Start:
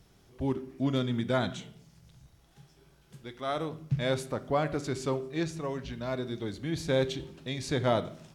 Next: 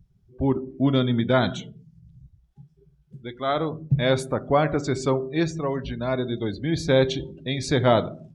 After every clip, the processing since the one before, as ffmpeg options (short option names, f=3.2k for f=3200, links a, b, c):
-af "afftdn=nr=28:nf=-48,volume=8dB"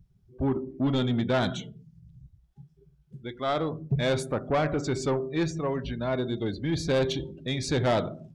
-af "asoftclip=type=tanh:threshold=-17.5dB,volume=-1.5dB"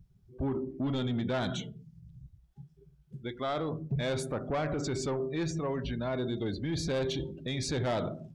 -af "alimiter=level_in=2dB:limit=-24dB:level=0:latency=1:release=26,volume=-2dB"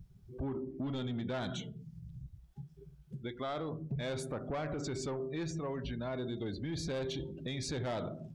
-af "acompressor=threshold=-48dB:ratio=2,volume=4.5dB"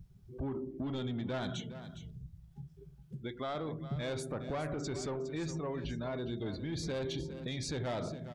-af "aecho=1:1:411:0.237"